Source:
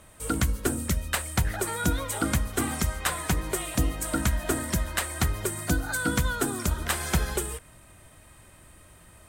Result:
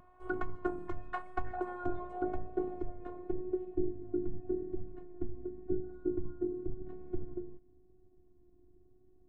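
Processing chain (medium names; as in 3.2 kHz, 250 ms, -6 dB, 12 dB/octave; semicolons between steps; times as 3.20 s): low-pass sweep 1 kHz -> 260 Hz, 1.36–4.07 s; robot voice 362 Hz; vibrato 0.91 Hz 23 cents; trim -6 dB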